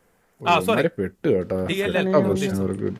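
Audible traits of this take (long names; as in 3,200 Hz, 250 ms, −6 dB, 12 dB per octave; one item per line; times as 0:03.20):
background noise floor −64 dBFS
spectral slope −5.0 dB per octave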